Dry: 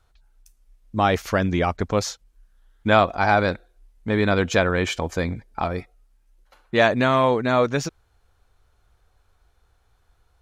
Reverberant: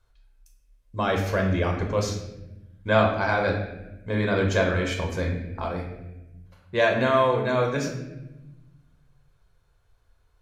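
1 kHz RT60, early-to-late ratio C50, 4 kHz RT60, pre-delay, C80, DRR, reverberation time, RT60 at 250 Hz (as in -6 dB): 0.85 s, 5.5 dB, 0.75 s, 8 ms, 8.0 dB, 1.0 dB, 1.0 s, 1.7 s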